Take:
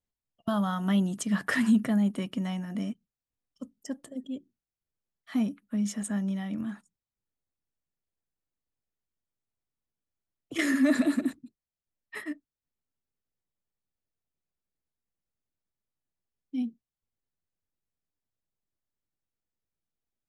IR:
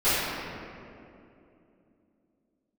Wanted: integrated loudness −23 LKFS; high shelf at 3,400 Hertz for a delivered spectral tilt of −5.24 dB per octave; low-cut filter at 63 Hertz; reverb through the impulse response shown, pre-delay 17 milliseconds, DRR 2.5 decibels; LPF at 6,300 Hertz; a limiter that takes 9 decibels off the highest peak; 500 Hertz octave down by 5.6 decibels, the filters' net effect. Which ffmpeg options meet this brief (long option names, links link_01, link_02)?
-filter_complex "[0:a]highpass=63,lowpass=6300,equalizer=frequency=500:width_type=o:gain=-8.5,highshelf=frequency=3400:gain=5.5,alimiter=level_in=1dB:limit=-24dB:level=0:latency=1,volume=-1dB,asplit=2[link_01][link_02];[1:a]atrim=start_sample=2205,adelay=17[link_03];[link_02][link_03]afir=irnorm=-1:irlink=0,volume=-20dB[link_04];[link_01][link_04]amix=inputs=2:normalize=0,volume=11dB"